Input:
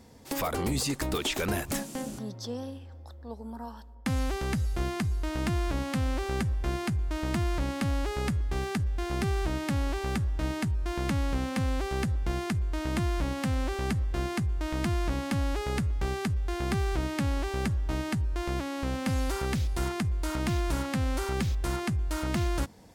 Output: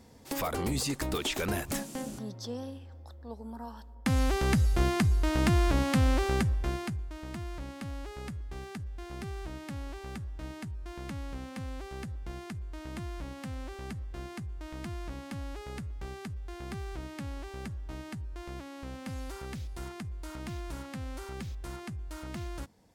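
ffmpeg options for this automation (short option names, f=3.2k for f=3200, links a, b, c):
-af "volume=4dB,afade=t=in:st=3.66:d=0.84:silence=0.501187,afade=t=out:st=6.14:d=0.66:silence=0.421697,afade=t=out:st=6.8:d=0.32:silence=0.446684"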